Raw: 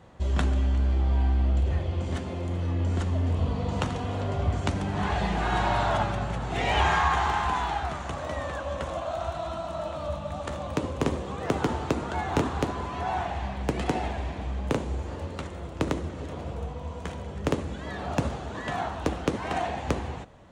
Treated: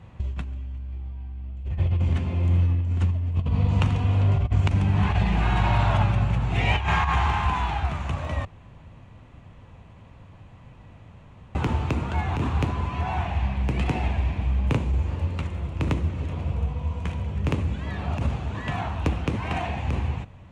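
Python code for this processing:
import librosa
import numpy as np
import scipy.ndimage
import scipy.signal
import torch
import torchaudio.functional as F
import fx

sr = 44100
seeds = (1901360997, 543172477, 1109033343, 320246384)

y = fx.high_shelf(x, sr, hz=5500.0, db=-4.5, at=(1.85, 2.44))
y = fx.edit(y, sr, fx.room_tone_fill(start_s=8.45, length_s=3.1), tone=tone)
y = fx.bass_treble(y, sr, bass_db=12, treble_db=0)
y = fx.over_compress(y, sr, threshold_db=-17.0, ratio=-0.5)
y = fx.graphic_eq_15(y, sr, hz=(100, 1000, 2500), db=(5, 5, 11))
y = F.gain(torch.from_numpy(y), -6.5).numpy()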